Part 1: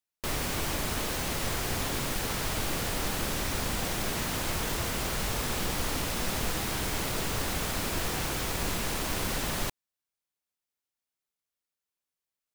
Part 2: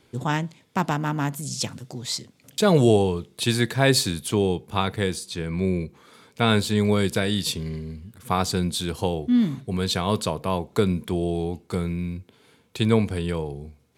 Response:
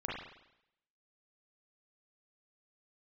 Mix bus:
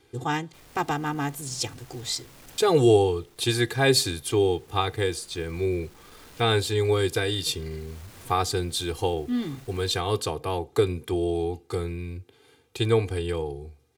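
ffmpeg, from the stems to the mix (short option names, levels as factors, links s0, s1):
-filter_complex "[0:a]asoftclip=type=tanh:threshold=0.0178,adelay=300,volume=0.355[s0];[1:a]aecho=1:1:2.5:0.97,volume=0.631,asplit=2[s1][s2];[s2]apad=whole_len=566484[s3];[s0][s3]sidechaincompress=threshold=0.0355:ratio=12:attack=29:release=1380[s4];[s4][s1]amix=inputs=2:normalize=0"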